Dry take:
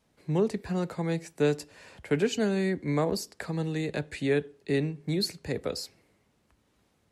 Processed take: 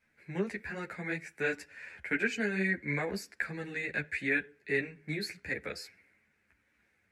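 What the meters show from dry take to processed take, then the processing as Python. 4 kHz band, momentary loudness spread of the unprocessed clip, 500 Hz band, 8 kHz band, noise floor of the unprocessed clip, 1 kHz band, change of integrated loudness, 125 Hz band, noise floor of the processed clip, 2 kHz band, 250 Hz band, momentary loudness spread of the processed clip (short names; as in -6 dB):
-8.5 dB, 8 LU, -8.5 dB, -8.5 dB, -71 dBFS, -6.5 dB, -4.5 dB, -10.0 dB, -74 dBFS, +7.0 dB, -8.0 dB, 11 LU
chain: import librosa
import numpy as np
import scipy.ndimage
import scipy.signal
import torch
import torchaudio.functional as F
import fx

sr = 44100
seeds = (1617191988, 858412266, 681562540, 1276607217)

y = fx.band_shelf(x, sr, hz=1900.0, db=16.0, octaves=1.0)
y = fx.ensemble(y, sr)
y = F.gain(torch.from_numpy(y), -5.5).numpy()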